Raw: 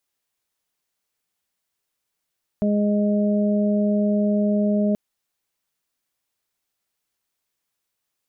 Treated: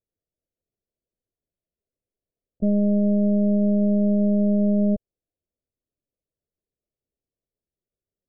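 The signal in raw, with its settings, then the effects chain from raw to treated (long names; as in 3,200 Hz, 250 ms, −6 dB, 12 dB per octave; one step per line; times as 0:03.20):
steady harmonic partials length 2.33 s, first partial 207 Hz, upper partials −10/−6.5 dB, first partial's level −18 dB
Butterworth low-pass 620 Hz 48 dB per octave
low-shelf EQ 170 Hz +3.5 dB
linear-prediction vocoder at 8 kHz pitch kept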